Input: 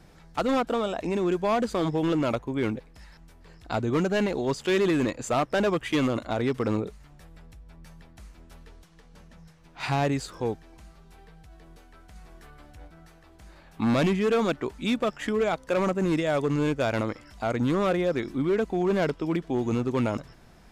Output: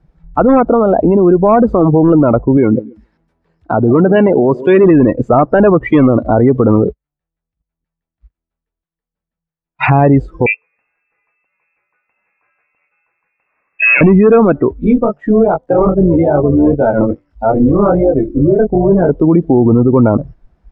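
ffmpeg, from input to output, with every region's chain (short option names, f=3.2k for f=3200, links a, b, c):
-filter_complex "[0:a]asettb=1/sr,asplit=3[a][b][c];[a]atrim=end=2.574[d];[b]atrim=start=2.57:end=4.84,asetpts=PTS-STARTPTS,afade=t=in:d=0.004:c=qsin,afade=t=out:st=2.266:d=0.004:c=qsin,highpass=f=140:p=1,aecho=1:1:139|278|417|556:0.119|0.0594|0.0297|0.0149,atrim=end_sample=100107[e];[c]atrim=start=4.836[f];[d][e]acrossfade=d=0.004:c1=hsin:c2=qsin[g];[g][f]acrossfade=d=0.004:c1=qsin:c2=hsin,asettb=1/sr,asplit=3[h][i][j];[h]atrim=end=6.684[k];[i]atrim=start=6.68:end=9.9,asetpts=PTS-STARTPTS,afade=t=in:d=0.004:c=qsin,afade=t=out:st=3.216:d=0.004:c=qsin,lowpass=4.9k,agate=range=-29dB:threshold=-43dB:ratio=16:release=100:detection=peak,equalizer=f=3.3k:w=0.39:g=6.5[l];[j]atrim=start=9.896[m];[k][l]acrossfade=d=0.004:c1=hsin:c2=qsin[n];[n][m]acrossfade=d=0.004:c1=qsin:c2=hsin,asettb=1/sr,asplit=3[o][p][q];[o]atrim=end=10.464[r];[p]atrim=start=10.46:end=14.01,asetpts=PTS-STARTPTS,afade=t=in:d=0.004:c=qsin,afade=t=out:st=3.546:d=0.004:c=qsin,highpass=f=100:w=0.5412,highpass=f=100:w=1.3066,lowpass=f=2.4k:t=q:w=0.5098,lowpass=f=2.4k:t=q:w=0.6013,lowpass=f=2.4k:t=q:w=0.9,lowpass=f=2.4k:t=q:w=2.563,afreqshift=-2800[s];[q]atrim=start=14.006[t];[r][s]acrossfade=d=0.004:c1=hsin:c2=qsin[u];[u][t]acrossfade=d=0.004:c1=qsin:c2=hsin,asettb=1/sr,asplit=3[v][w][x];[v]atrim=end=14.734[y];[w]atrim=start=14.73:end=19.09,asetpts=PTS-STARTPTS,afade=t=in:d=0.004:c=qsin,afade=t=out:st=4.356:d=0.004:c=qsin,tremolo=f=230:d=0.667,flanger=delay=20:depth=4:speed=2.4[z];[x]atrim=start=19.086[aa];[y][z]acrossfade=d=0.004:c1=hsin:c2=qsin[ab];[ab][aa]acrossfade=d=0.004:c1=qsin:c2=hsin,lowpass=f=1.1k:p=1,afftdn=nr=29:nf=-34,alimiter=level_in=24.5dB:limit=-1dB:release=50:level=0:latency=1,volume=-1dB"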